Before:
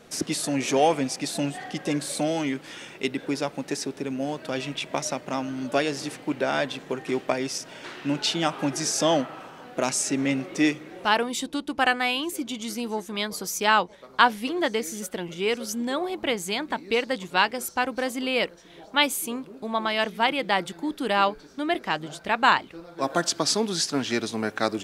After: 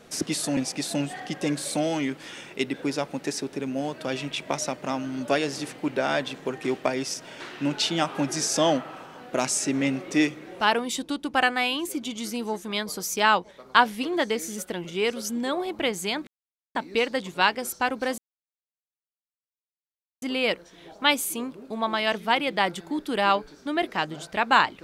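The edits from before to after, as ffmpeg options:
ffmpeg -i in.wav -filter_complex "[0:a]asplit=4[link_01][link_02][link_03][link_04];[link_01]atrim=end=0.572[link_05];[link_02]atrim=start=1.008:end=16.71,asetpts=PTS-STARTPTS,afade=type=out:start_time=15.698:duration=0.004:curve=hsin,apad=pad_dur=0.48[link_06];[link_03]atrim=start=16.71:end=18.14,asetpts=PTS-STARTPTS,afade=type=in:duration=0.004:curve=hsin,afade=type=out:start_time=1.426:duration=0.004:curve=hsin,apad=pad_dur=2.04[link_07];[link_04]atrim=start=18.14,asetpts=PTS-STARTPTS,afade=type=in:duration=0.004:curve=hsin[link_08];[link_06][link_07][link_08]concat=n=3:v=0:a=1[link_09];[link_05][link_09]acrossfade=duration=0.004:curve1=hsin:curve2=hsin" out.wav

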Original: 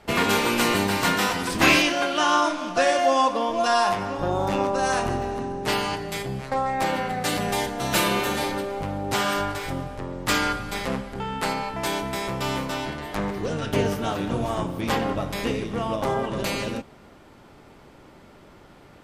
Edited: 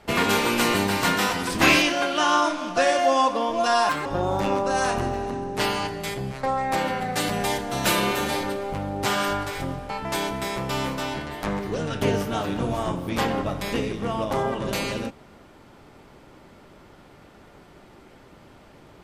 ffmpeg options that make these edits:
ffmpeg -i in.wav -filter_complex "[0:a]asplit=4[link_01][link_02][link_03][link_04];[link_01]atrim=end=3.894[link_05];[link_02]atrim=start=3.89:end=4.14,asetpts=PTS-STARTPTS,asetrate=66150,aresample=44100[link_06];[link_03]atrim=start=4.136:end=9.982[link_07];[link_04]atrim=start=11.608[link_08];[link_05][link_06]acrossfade=duration=0.004:curve1=hsin:curve2=hsin[link_09];[link_09][link_07]acrossfade=duration=0.004:curve1=hsin:curve2=hsin[link_10];[link_10][link_08]acrossfade=duration=0.004:curve1=hsin:curve2=hsin" out.wav

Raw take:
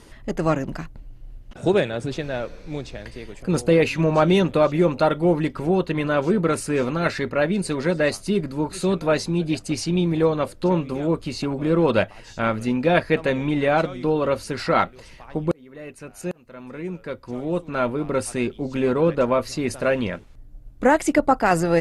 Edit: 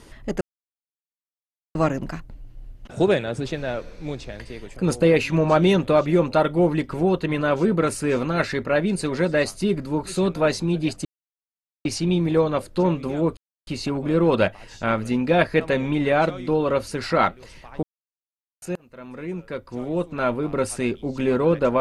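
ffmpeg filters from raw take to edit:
ffmpeg -i in.wav -filter_complex "[0:a]asplit=6[link_01][link_02][link_03][link_04][link_05][link_06];[link_01]atrim=end=0.41,asetpts=PTS-STARTPTS,afade=type=out:start_time=0.406:duration=0.004:curve=hsin,apad=pad_dur=1.34[link_07];[link_02]atrim=start=0.41:end=9.71,asetpts=PTS-STARTPTS,afade=type=in:duration=0.004:curve=hsin,afade=type=out:start_time=9.296:duration=0.004:curve=hsin,apad=pad_dur=0.8[link_08];[link_03]atrim=start=9.71:end=11.23,asetpts=PTS-STARTPTS,afade=type=in:duration=0.004:curve=hsin,afade=type=out:start_time=1.516:duration=0.004:curve=hsin,apad=pad_dur=0.3[link_09];[link_04]atrim=start=11.23:end=15.39,asetpts=PTS-STARTPTS,afade=type=in:duration=0.004:curve=hsin,afade=type=out:start_time=4.156:duration=0.004:curve=hsin[link_10];[link_05]atrim=start=15.39:end=16.18,asetpts=PTS-STARTPTS,volume=0[link_11];[link_06]atrim=start=16.18,asetpts=PTS-STARTPTS,afade=type=in:duration=0.004:curve=hsin[link_12];[link_07][link_08][link_09][link_10][link_11][link_12]concat=n=6:v=0:a=1" out.wav

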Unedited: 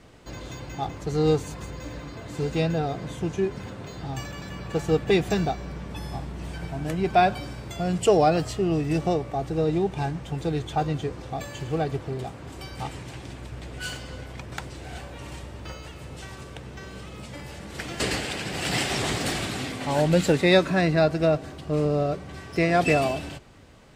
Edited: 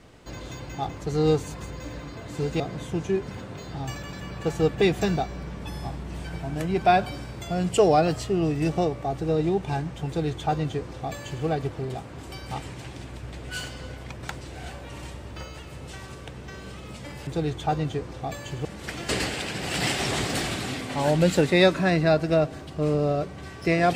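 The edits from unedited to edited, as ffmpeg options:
ffmpeg -i in.wav -filter_complex "[0:a]asplit=4[link_01][link_02][link_03][link_04];[link_01]atrim=end=2.602[link_05];[link_02]atrim=start=2.888:end=17.562[link_06];[link_03]atrim=start=10.358:end=11.742[link_07];[link_04]atrim=start=17.558[link_08];[link_05][link_06]acrossfade=duration=0.004:curve1=hsin:curve2=hsin[link_09];[link_09][link_07]acrossfade=duration=0.004:curve1=hsin:curve2=hsin[link_10];[link_10][link_08]acrossfade=duration=0.004:curve1=hsin:curve2=hsin" out.wav

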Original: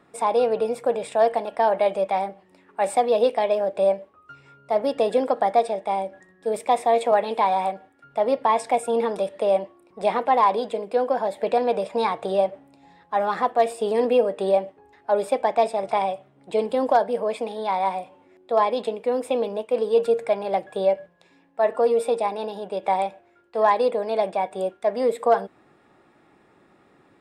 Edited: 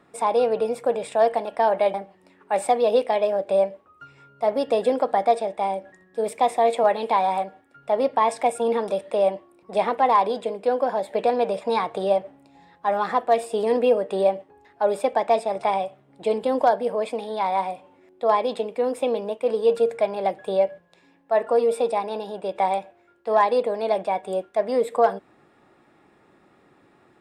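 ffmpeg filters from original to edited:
ffmpeg -i in.wav -filter_complex "[0:a]asplit=2[link_01][link_02];[link_01]atrim=end=1.942[link_03];[link_02]atrim=start=2.218[link_04];[link_03][link_04]acrossfade=duration=0.004:curve1=hsin:curve2=hsin" out.wav

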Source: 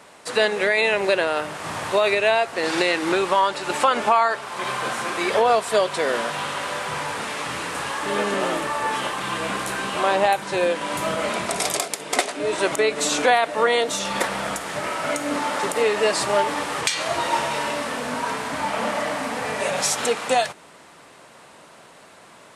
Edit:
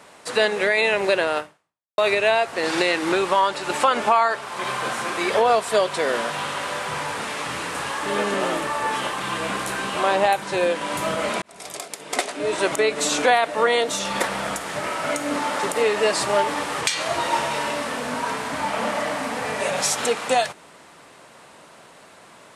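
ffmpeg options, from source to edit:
ffmpeg -i in.wav -filter_complex "[0:a]asplit=3[link_01][link_02][link_03];[link_01]atrim=end=1.98,asetpts=PTS-STARTPTS,afade=type=out:start_time=1.38:duration=0.6:curve=exp[link_04];[link_02]atrim=start=1.98:end=11.42,asetpts=PTS-STARTPTS,afade=type=in:duration=0.004:curve=hsin,afade=type=out:start_time=9.436:duration=0.004:curve=hsin[link_05];[link_03]atrim=start=11.42,asetpts=PTS-STARTPTS,afade=type=in:duration=1.04[link_06];[link_04][link_05][link_06]concat=n=3:v=0:a=1" out.wav

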